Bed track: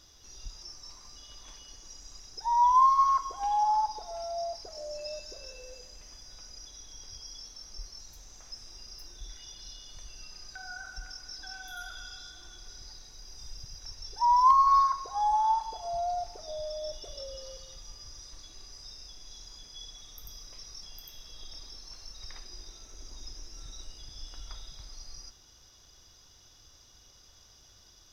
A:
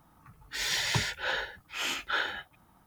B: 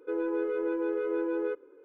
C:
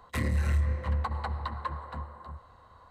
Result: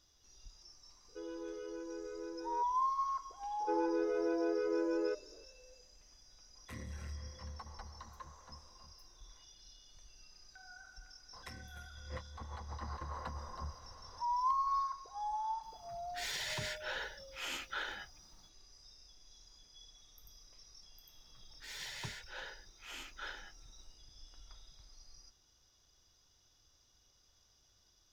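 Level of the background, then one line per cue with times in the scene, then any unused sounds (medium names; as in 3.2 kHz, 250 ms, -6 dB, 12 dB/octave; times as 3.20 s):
bed track -12.5 dB
1.08 s: add B -14.5 dB
3.60 s: add B -4 dB
6.55 s: add C -16.5 dB + high-pass 71 Hz
11.33 s: add C -8 dB + compressor with a negative ratio -39 dBFS
15.63 s: add A -8 dB + peak limiter -22 dBFS
21.09 s: add A -15.5 dB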